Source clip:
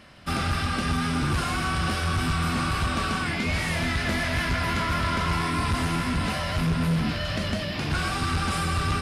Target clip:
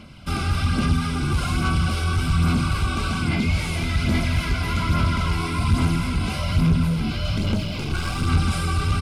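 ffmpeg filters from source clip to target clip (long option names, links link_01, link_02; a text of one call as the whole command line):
ffmpeg -i in.wav -filter_complex "[0:a]firequalizer=gain_entry='entry(230,0);entry(480,-8);entry(2200,-5)':delay=0.05:min_phase=1,asplit=2[link_01][link_02];[link_02]alimiter=level_in=2.5dB:limit=-24dB:level=0:latency=1,volume=-2.5dB,volume=1.5dB[link_03];[link_01][link_03]amix=inputs=2:normalize=0,asettb=1/sr,asplit=3[link_04][link_05][link_06];[link_04]atrim=end=7.374[link_07];[link_05]atrim=start=7.37:end=8.27,asetpts=PTS-STARTPTS,afade=type=in:duration=0.004:curve=qsin,afade=type=out:start_time=0.896:duration=0.004:curve=qsin,aeval=exprs='clip(val(0),-1,0.0447)':channel_layout=same[link_08];[link_06]atrim=start=8.266[link_09];[link_07][link_08]acrossfade=duration=0.004:curve1=hsin:curve2=qsin[link_10];[link_10][link_09]acrossfade=duration=0.004:curve1=qsin:curve2=hsin,aphaser=in_gain=1:out_gain=1:delay=2.7:decay=0.38:speed=1.2:type=sinusoidal,asuperstop=centerf=1800:order=8:qfactor=5.7,asplit=2[link_11][link_12];[link_12]adelay=22,volume=-13dB[link_13];[link_11][link_13]amix=inputs=2:normalize=0" out.wav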